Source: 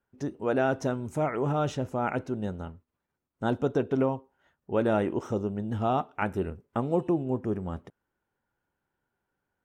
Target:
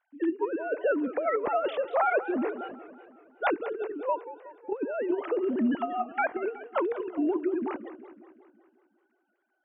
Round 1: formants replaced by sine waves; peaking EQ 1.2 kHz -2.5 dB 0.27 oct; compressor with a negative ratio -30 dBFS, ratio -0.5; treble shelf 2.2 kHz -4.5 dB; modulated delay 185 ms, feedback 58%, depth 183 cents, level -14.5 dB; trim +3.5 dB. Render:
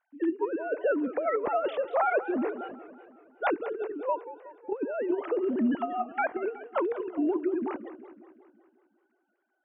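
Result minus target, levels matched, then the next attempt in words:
4 kHz band -2.5 dB
formants replaced by sine waves; peaking EQ 1.2 kHz -2.5 dB 0.27 oct; compressor with a negative ratio -30 dBFS, ratio -0.5; modulated delay 185 ms, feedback 58%, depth 183 cents, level -14.5 dB; trim +3.5 dB

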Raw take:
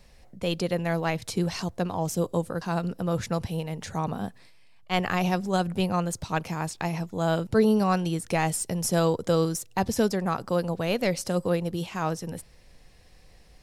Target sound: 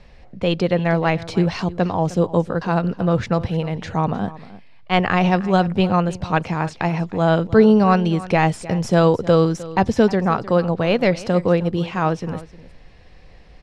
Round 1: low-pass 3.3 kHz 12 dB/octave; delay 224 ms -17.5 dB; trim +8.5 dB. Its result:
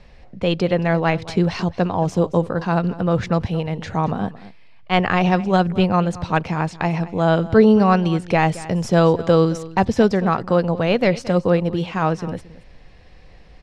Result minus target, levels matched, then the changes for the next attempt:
echo 84 ms early
change: delay 308 ms -17.5 dB

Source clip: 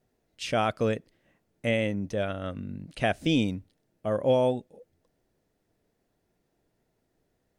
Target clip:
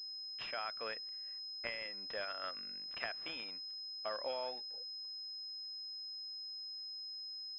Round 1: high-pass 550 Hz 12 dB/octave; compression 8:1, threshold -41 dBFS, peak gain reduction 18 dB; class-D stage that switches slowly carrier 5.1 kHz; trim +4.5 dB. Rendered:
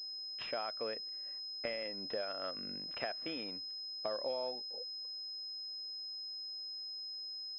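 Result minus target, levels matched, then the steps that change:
500 Hz band +3.0 dB
change: high-pass 1.3 kHz 12 dB/octave

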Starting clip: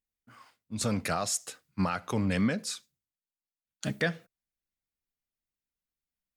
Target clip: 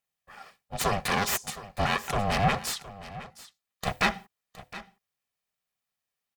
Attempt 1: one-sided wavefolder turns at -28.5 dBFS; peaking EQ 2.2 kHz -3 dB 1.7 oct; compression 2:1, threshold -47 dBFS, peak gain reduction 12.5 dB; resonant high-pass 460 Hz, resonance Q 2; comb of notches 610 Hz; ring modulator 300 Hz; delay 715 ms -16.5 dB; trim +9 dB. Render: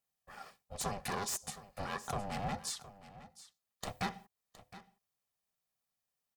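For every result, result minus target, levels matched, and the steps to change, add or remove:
compression: peak gain reduction +12.5 dB; one-sided wavefolder: distortion -9 dB; 2 kHz band -3.5 dB
remove: compression 2:1, threshold -47 dBFS, peak gain reduction 12.5 dB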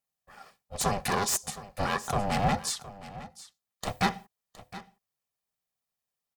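one-sided wavefolder: distortion -9 dB; 2 kHz band -3.5 dB
change: one-sided wavefolder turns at -35.5 dBFS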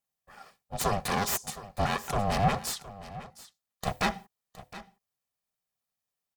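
2 kHz band -3.5 dB
change: peaking EQ 2.2 kHz +3.5 dB 1.7 oct

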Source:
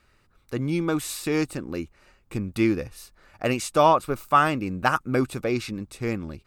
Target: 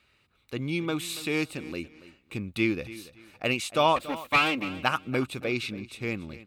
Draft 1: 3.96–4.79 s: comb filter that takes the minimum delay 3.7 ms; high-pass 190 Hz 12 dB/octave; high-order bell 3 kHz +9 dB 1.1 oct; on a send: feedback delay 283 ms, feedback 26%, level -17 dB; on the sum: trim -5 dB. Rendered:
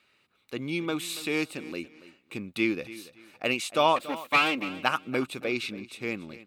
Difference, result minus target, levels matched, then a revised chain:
125 Hz band -6.0 dB
3.96–4.79 s: comb filter that takes the minimum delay 3.7 ms; high-pass 65 Hz 12 dB/octave; high-order bell 3 kHz +9 dB 1.1 oct; on a send: feedback delay 283 ms, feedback 26%, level -17 dB; on the sum: trim -5 dB

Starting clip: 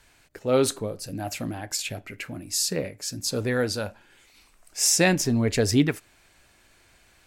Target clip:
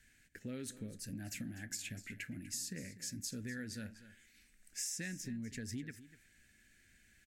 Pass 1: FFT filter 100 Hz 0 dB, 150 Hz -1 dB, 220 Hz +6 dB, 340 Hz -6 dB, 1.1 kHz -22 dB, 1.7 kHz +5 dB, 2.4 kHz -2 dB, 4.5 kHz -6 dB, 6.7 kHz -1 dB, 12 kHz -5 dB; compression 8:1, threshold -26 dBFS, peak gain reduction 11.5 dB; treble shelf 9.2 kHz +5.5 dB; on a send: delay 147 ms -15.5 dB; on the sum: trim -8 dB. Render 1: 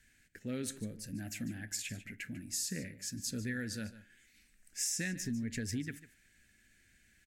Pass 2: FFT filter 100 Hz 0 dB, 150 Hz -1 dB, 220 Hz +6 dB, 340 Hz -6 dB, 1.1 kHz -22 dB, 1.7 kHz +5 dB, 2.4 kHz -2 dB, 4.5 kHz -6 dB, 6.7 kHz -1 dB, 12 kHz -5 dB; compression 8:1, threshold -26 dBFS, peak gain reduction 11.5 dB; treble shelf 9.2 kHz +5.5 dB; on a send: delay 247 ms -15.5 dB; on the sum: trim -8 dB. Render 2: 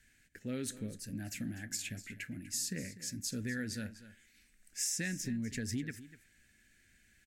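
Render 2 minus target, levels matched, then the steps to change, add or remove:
compression: peak gain reduction -5.5 dB
change: compression 8:1, threshold -32.5 dBFS, peak gain reduction 17 dB

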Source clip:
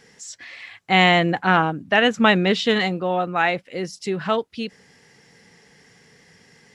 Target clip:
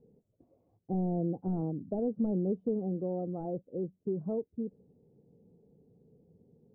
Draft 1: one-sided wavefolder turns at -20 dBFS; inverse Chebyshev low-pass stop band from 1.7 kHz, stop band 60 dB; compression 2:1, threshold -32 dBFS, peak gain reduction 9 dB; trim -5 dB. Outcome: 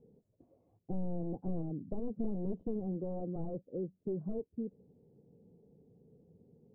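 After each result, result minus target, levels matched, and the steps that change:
one-sided wavefolder: distortion +16 dB; compression: peak gain reduction +2.5 dB
change: one-sided wavefolder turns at -9 dBFS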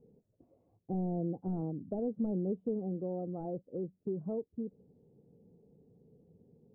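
compression: peak gain reduction +3 dB
change: compression 2:1, threshold -26 dBFS, peak gain reduction 6.5 dB

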